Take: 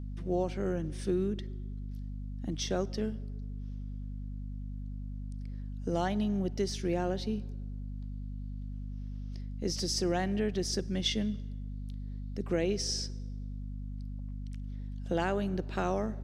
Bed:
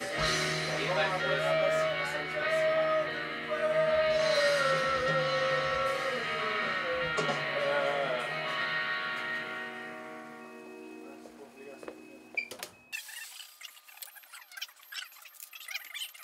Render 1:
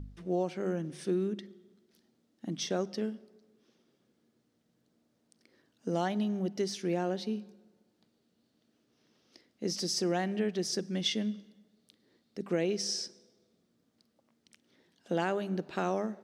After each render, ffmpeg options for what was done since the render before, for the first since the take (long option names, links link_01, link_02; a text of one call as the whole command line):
ffmpeg -i in.wav -af "bandreject=frequency=50:width_type=h:width=4,bandreject=frequency=100:width_type=h:width=4,bandreject=frequency=150:width_type=h:width=4,bandreject=frequency=200:width_type=h:width=4,bandreject=frequency=250:width_type=h:width=4" out.wav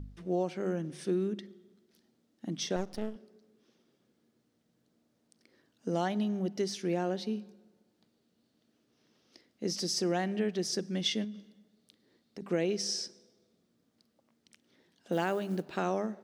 ffmpeg -i in.wav -filter_complex "[0:a]asettb=1/sr,asplit=3[link_01][link_02][link_03];[link_01]atrim=end=2.764[link_04];[link_02]atrim=start=2.76:end=3.16,asetpts=PTS-STARTPTS,afade=type=in:duration=0.004:curve=qsin,afade=type=out:start_time=0.396:duration=0.004:curve=qsin,aeval=exprs='max(val(0),0)':channel_layout=same[link_05];[link_03]atrim=start=3.156[link_06];[link_04][link_05]acrossfade=duration=0.004:curve1=hsin:curve2=qsin[link_07];[link_07][link_06]acrossfade=duration=0.004:curve1=qsin:curve2=hsin,asettb=1/sr,asplit=3[link_08][link_09][link_10];[link_08]atrim=end=11.244[link_11];[link_09]atrim=start=11.24:end=12.42,asetpts=PTS-STARTPTS,afade=type=in:duration=0.004:curve=qsin,afade=type=out:start_time=1.176:duration=0.004:curve=qsin,acompressor=threshold=-37dB:ratio=6:attack=3.2:release=140:knee=1:detection=peak[link_12];[link_10]atrim=start=12.416[link_13];[link_11][link_12]acrossfade=duration=0.004:curve1=hsin:curve2=qsin[link_14];[link_14][link_13]acrossfade=duration=0.004:curve1=qsin:curve2=hsin,asettb=1/sr,asplit=3[link_15][link_16][link_17];[link_15]atrim=end=15.124[link_18];[link_16]atrim=start=15.12:end=15.77,asetpts=PTS-STARTPTS,afade=type=in:duration=0.004:curve=qsin,afade=type=out:start_time=0.646:duration=0.004:curve=qsin,acrusher=bits=7:mode=log:mix=0:aa=0.000001[link_19];[link_17]atrim=start=15.766[link_20];[link_18][link_19]acrossfade=duration=0.004:curve1=hsin:curve2=qsin[link_21];[link_21][link_20]acrossfade=duration=0.004:curve1=qsin:curve2=hsin" out.wav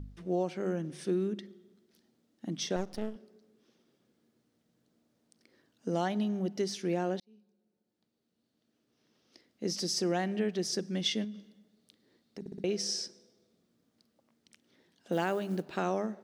ffmpeg -i in.wav -filter_complex "[0:a]asplit=6[link_01][link_02][link_03][link_04][link_05][link_06];[link_01]atrim=end=7.2,asetpts=PTS-STARTPTS,afade=type=out:start_time=7.196:duration=0.004:curve=hsin[link_07];[link_02]atrim=start=7.2:end=12.462,asetpts=PTS-STARTPTS,afade=type=in:duration=2.49[link_08];[link_03]atrim=start=12.398:end=12.462[link_09];[link_04]atrim=start=12.398:end=12.462[link_10];[link_05]atrim=start=12.398:end=12.462[link_11];[link_06]atrim=start=12.638[link_12];[link_07][link_08]concat=n=2:v=0:a=1[link_13];[link_13][link_09]acrossfade=duration=0.004:curve1=hsin:curve2=hsin[link_14];[link_14][link_10]acrossfade=duration=0.004:curve1=hsin:curve2=hsin[link_15];[link_15][link_11]acrossfade=duration=0.004:curve1=hsin:curve2=hsin[link_16];[link_16][link_12]acrossfade=duration=0.004:curve1=hsin:curve2=hsin" out.wav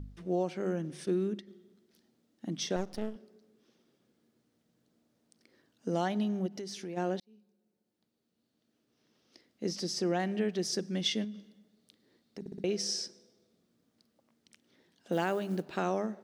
ffmpeg -i in.wav -filter_complex "[0:a]asplit=3[link_01][link_02][link_03];[link_01]afade=type=out:start_time=1.05:duration=0.02[link_04];[link_02]agate=range=-33dB:threshold=-40dB:ratio=3:release=100:detection=peak,afade=type=in:start_time=1.05:duration=0.02,afade=type=out:start_time=1.46:duration=0.02[link_05];[link_03]afade=type=in:start_time=1.46:duration=0.02[link_06];[link_04][link_05][link_06]amix=inputs=3:normalize=0,asplit=3[link_07][link_08][link_09];[link_07]afade=type=out:start_time=6.46:duration=0.02[link_10];[link_08]acompressor=threshold=-38dB:ratio=4:attack=3.2:release=140:knee=1:detection=peak,afade=type=in:start_time=6.46:duration=0.02,afade=type=out:start_time=6.96:duration=0.02[link_11];[link_09]afade=type=in:start_time=6.96:duration=0.02[link_12];[link_10][link_11][link_12]amix=inputs=3:normalize=0,asettb=1/sr,asplit=3[link_13][link_14][link_15];[link_13]atrim=end=9.694[link_16];[link_14]atrim=start=9.69:end=10.2,asetpts=PTS-STARTPTS,afade=type=in:duration=0.004:curve=qsin,afade=type=out:start_time=0.506:duration=0.004:curve=qsin,highshelf=frequency=5500:gain=-8[link_17];[link_15]atrim=start=10.196[link_18];[link_16][link_17]acrossfade=duration=0.004:curve1=hsin:curve2=qsin[link_19];[link_19][link_18]acrossfade=duration=0.004:curve1=qsin:curve2=hsin" out.wav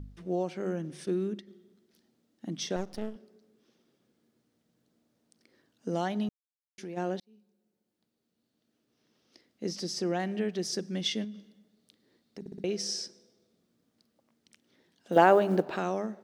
ffmpeg -i in.wav -filter_complex "[0:a]asettb=1/sr,asplit=3[link_01][link_02][link_03];[link_01]atrim=end=15.164[link_04];[link_02]atrim=start=15.16:end=15.77,asetpts=PTS-STARTPTS,afade=type=in:duration=0.004:curve=qsin,afade=type=out:start_time=0.606:duration=0.004:curve=qsin,equalizer=frequency=730:width_type=o:width=2.9:gain=14[link_05];[link_03]atrim=start=15.766[link_06];[link_04][link_05]acrossfade=duration=0.004:curve1=hsin:curve2=qsin[link_07];[link_07][link_06]acrossfade=duration=0.004:curve1=qsin:curve2=hsin,asplit=3[link_08][link_09][link_10];[link_08]atrim=end=6.29,asetpts=PTS-STARTPTS,afade=type=out:start_time=6.286:duration=0.004:curve=hsin[link_11];[link_09]atrim=start=6.29:end=6.78,asetpts=PTS-STARTPTS,volume=0[link_12];[link_10]atrim=start=6.78,asetpts=PTS-STARTPTS,afade=type=in:duration=0.004:curve=hsin[link_13];[link_11][link_12][link_13]concat=n=3:v=0:a=1" out.wav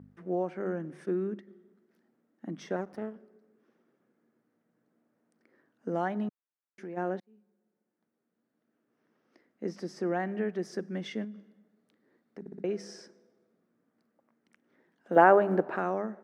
ffmpeg -i in.wav -af "highpass=170,highshelf=frequency=2500:width_type=q:width=1.5:gain=-13.5" out.wav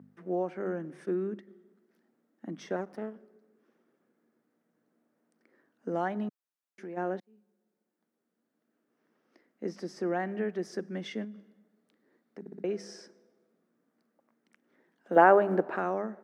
ffmpeg -i in.wav -af "highpass=160" out.wav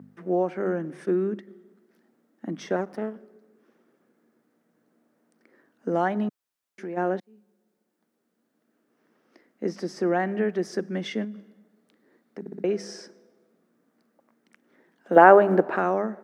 ffmpeg -i in.wav -af "volume=7dB,alimiter=limit=-2dB:level=0:latency=1" out.wav